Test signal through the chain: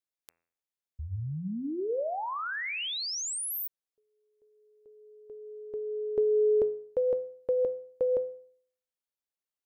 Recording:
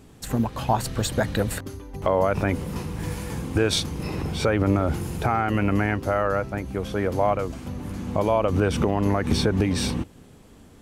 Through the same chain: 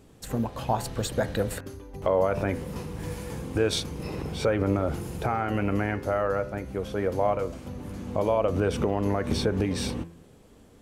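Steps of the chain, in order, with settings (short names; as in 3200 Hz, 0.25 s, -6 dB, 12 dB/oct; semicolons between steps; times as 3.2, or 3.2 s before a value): bell 500 Hz +5 dB 0.73 oct; de-hum 84.63 Hz, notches 32; gain -5 dB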